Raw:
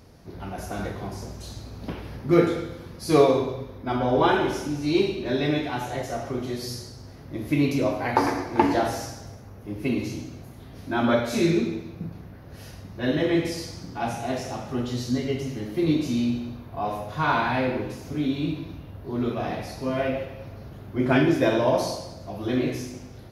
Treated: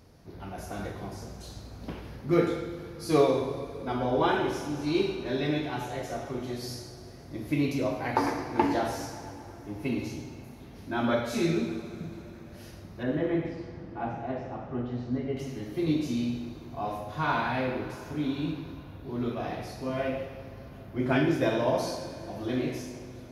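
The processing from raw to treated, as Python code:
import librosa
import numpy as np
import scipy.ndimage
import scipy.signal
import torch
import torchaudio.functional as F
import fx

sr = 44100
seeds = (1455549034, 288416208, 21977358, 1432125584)

y = fx.lowpass(x, sr, hz=1700.0, slope=12, at=(13.03, 15.37))
y = fx.rev_plate(y, sr, seeds[0], rt60_s=4.6, hf_ratio=0.85, predelay_ms=0, drr_db=11.5)
y = y * librosa.db_to_amplitude(-5.0)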